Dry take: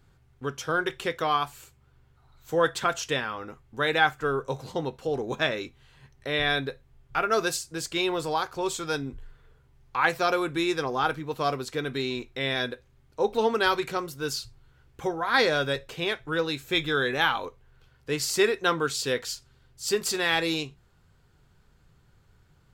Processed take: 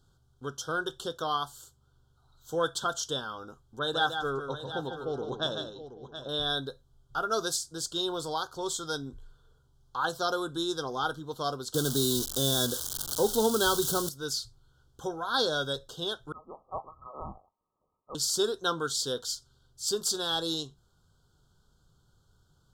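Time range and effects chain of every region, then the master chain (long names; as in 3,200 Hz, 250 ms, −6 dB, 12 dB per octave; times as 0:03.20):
0:03.79–0:06.29: low-pass that shuts in the quiet parts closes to 650 Hz, open at −20.5 dBFS + multi-tap delay 149/726/897 ms −7/−11.5/−18.5 dB
0:11.74–0:14.09: spike at every zero crossing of −19 dBFS + low-shelf EQ 370 Hz +11 dB + multiband upward and downward compressor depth 40%
0:16.32–0:18.15: linear-phase brick-wall high-pass 1,800 Hz + voice inversion scrambler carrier 3,100 Hz
whole clip: elliptic band-stop filter 1,500–3,200 Hz, stop band 50 dB; parametric band 6,000 Hz +7 dB 2.5 octaves; level −5.5 dB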